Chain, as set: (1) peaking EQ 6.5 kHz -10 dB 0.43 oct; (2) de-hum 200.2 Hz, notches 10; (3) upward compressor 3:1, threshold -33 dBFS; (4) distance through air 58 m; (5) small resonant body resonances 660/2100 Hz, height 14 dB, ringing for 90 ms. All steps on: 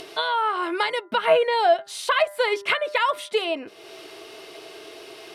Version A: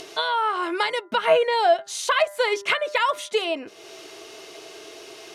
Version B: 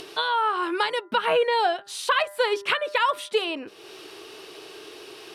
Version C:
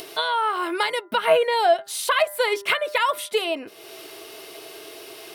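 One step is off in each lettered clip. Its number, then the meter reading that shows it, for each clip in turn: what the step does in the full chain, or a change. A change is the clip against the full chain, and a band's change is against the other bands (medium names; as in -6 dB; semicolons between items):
1, 8 kHz band +5.5 dB; 5, 500 Hz band -3.0 dB; 4, 8 kHz band +6.5 dB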